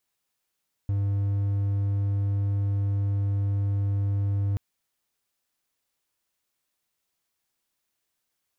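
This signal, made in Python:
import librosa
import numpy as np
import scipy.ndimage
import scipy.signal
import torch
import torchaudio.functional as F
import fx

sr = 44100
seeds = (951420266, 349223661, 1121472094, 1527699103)

y = 10.0 ** (-20.5 / 20.0) * (1.0 - 4.0 * np.abs(np.mod(99.9 * (np.arange(round(3.68 * sr)) / sr) + 0.25, 1.0) - 0.5))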